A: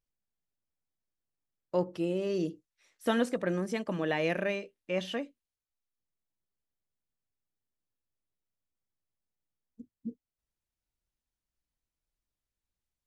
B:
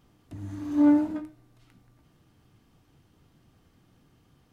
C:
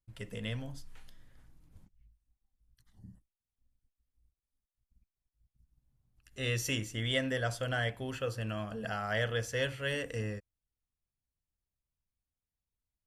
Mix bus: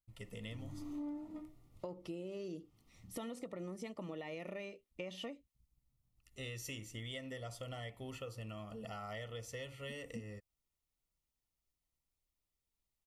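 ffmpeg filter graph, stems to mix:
ffmpeg -i stem1.wav -i stem2.wav -i stem3.wav -filter_complex "[0:a]alimiter=limit=-22.5dB:level=0:latency=1,adelay=100,volume=-1.5dB[link_01];[1:a]adelay=200,volume=-9.5dB[link_02];[2:a]volume=-6dB[link_03];[link_01][link_02][link_03]amix=inputs=3:normalize=0,asuperstop=centerf=1600:order=12:qfactor=4.7,highshelf=frequency=10000:gain=4,acompressor=threshold=-42dB:ratio=6" out.wav

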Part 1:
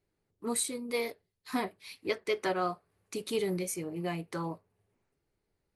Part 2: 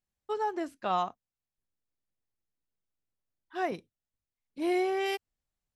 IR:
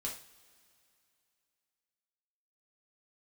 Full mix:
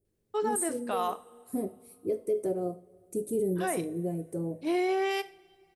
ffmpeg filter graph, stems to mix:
-filter_complex "[0:a]firequalizer=gain_entry='entry(560,0);entry(1000,-27);entry(4100,-29);entry(8400,0)':delay=0.05:min_phase=1,volume=0.5dB,asplit=2[link_01][link_02];[link_02]volume=-5dB[link_03];[1:a]highpass=240,adelay=50,volume=1dB,asplit=2[link_04][link_05];[link_05]volume=-9.5dB[link_06];[2:a]atrim=start_sample=2205[link_07];[link_03][link_06]amix=inputs=2:normalize=0[link_08];[link_08][link_07]afir=irnorm=-1:irlink=0[link_09];[link_01][link_04][link_09]amix=inputs=3:normalize=0,alimiter=limit=-21dB:level=0:latency=1:release=19"

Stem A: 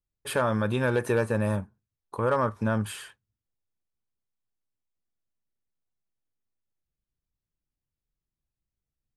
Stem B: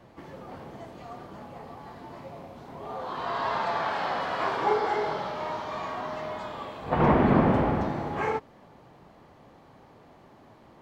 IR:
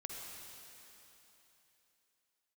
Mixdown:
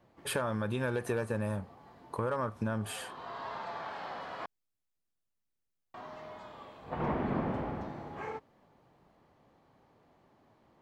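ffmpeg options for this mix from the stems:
-filter_complex "[0:a]acompressor=threshold=-29dB:ratio=4,volume=-1dB[link_01];[1:a]volume=-12dB,asplit=3[link_02][link_03][link_04];[link_02]atrim=end=4.46,asetpts=PTS-STARTPTS,afade=type=out:start_time=4.456:duration=0.004:curve=hsin[link_05];[link_03]atrim=start=4.46:end=5.94,asetpts=PTS-STARTPTS,volume=0[link_06];[link_04]atrim=start=5.94,asetpts=PTS-STARTPTS,afade=type=in:duration=0.004:curve=hsin[link_07];[link_05][link_06][link_07]concat=n=3:v=0:a=1[link_08];[link_01][link_08]amix=inputs=2:normalize=0"

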